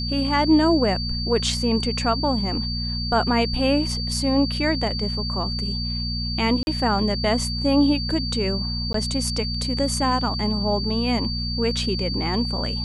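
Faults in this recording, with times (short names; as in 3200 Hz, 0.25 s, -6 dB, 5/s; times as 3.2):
hum 60 Hz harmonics 4 -28 dBFS
tone 4600 Hz -28 dBFS
6.63–6.67 gap 41 ms
8.93–8.94 gap 13 ms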